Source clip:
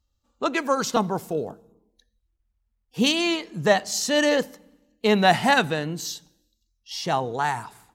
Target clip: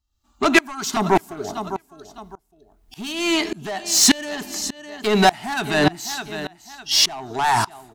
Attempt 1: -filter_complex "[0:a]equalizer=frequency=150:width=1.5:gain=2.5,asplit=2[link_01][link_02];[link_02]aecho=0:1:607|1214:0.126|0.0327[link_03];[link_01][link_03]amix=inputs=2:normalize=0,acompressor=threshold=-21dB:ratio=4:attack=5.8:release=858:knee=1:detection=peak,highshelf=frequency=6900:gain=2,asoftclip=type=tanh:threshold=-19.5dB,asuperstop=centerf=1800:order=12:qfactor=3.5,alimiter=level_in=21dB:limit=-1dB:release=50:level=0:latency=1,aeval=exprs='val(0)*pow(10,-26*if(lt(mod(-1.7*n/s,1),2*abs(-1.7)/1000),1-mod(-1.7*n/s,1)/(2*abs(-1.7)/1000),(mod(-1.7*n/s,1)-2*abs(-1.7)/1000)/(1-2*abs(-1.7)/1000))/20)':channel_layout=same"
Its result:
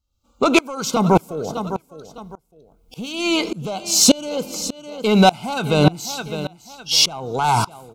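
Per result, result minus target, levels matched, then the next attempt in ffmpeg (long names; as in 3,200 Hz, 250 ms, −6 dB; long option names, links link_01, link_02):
125 Hz band +6.5 dB; 2,000 Hz band −5.0 dB; soft clipping: distortion −7 dB
-filter_complex "[0:a]equalizer=frequency=150:width=1.5:gain=-7,asplit=2[link_01][link_02];[link_02]aecho=0:1:607|1214:0.126|0.0327[link_03];[link_01][link_03]amix=inputs=2:normalize=0,acompressor=threshold=-21dB:ratio=4:attack=5.8:release=858:knee=1:detection=peak,highshelf=frequency=6900:gain=2,asoftclip=type=tanh:threshold=-19.5dB,asuperstop=centerf=1800:order=12:qfactor=3.5,alimiter=level_in=21dB:limit=-1dB:release=50:level=0:latency=1,aeval=exprs='val(0)*pow(10,-26*if(lt(mod(-1.7*n/s,1),2*abs(-1.7)/1000),1-mod(-1.7*n/s,1)/(2*abs(-1.7)/1000),(mod(-1.7*n/s,1)-2*abs(-1.7)/1000)/(1-2*abs(-1.7)/1000))/20)':channel_layout=same"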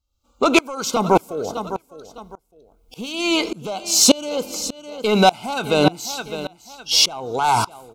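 soft clipping: distortion −7 dB; 2,000 Hz band −4.5 dB
-filter_complex "[0:a]equalizer=frequency=150:width=1.5:gain=-7,asplit=2[link_01][link_02];[link_02]aecho=0:1:607|1214:0.126|0.0327[link_03];[link_01][link_03]amix=inputs=2:normalize=0,acompressor=threshold=-21dB:ratio=4:attack=5.8:release=858:knee=1:detection=peak,highshelf=frequency=6900:gain=2,asoftclip=type=tanh:threshold=-26dB,asuperstop=centerf=1800:order=12:qfactor=3.5,alimiter=level_in=21dB:limit=-1dB:release=50:level=0:latency=1,aeval=exprs='val(0)*pow(10,-26*if(lt(mod(-1.7*n/s,1),2*abs(-1.7)/1000),1-mod(-1.7*n/s,1)/(2*abs(-1.7)/1000),(mod(-1.7*n/s,1)-2*abs(-1.7)/1000)/(1-2*abs(-1.7)/1000))/20)':channel_layout=same"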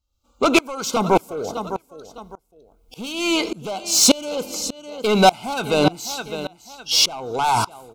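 2,000 Hz band −4.0 dB
-filter_complex "[0:a]equalizer=frequency=150:width=1.5:gain=-7,asplit=2[link_01][link_02];[link_02]aecho=0:1:607|1214:0.126|0.0327[link_03];[link_01][link_03]amix=inputs=2:normalize=0,acompressor=threshold=-21dB:ratio=4:attack=5.8:release=858:knee=1:detection=peak,highshelf=frequency=6900:gain=2,asoftclip=type=tanh:threshold=-26dB,asuperstop=centerf=510:order=12:qfactor=3.5,alimiter=level_in=21dB:limit=-1dB:release=50:level=0:latency=1,aeval=exprs='val(0)*pow(10,-26*if(lt(mod(-1.7*n/s,1),2*abs(-1.7)/1000),1-mod(-1.7*n/s,1)/(2*abs(-1.7)/1000),(mod(-1.7*n/s,1)-2*abs(-1.7)/1000)/(1-2*abs(-1.7)/1000))/20)':channel_layout=same"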